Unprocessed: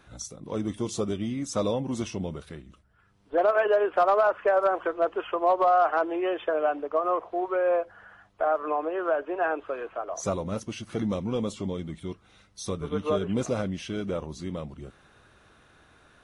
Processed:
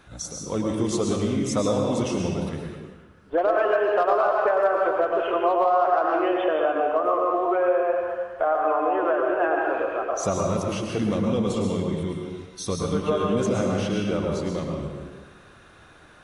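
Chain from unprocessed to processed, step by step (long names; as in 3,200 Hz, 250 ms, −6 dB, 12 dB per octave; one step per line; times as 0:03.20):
convolution reverb RT60 1.5 s, pre-delay 103 ms, DRR −0.5 dB
downward compressor 3 to 1, threshold −23 dBFS, peak gain reduction 8 dB
level +4 dB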